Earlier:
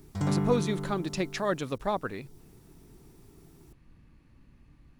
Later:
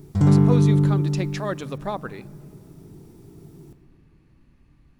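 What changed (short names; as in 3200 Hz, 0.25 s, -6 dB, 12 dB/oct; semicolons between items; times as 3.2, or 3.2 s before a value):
background: add low shelf 500 Hz +11.5 dB; reverb: on, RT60 2.7 s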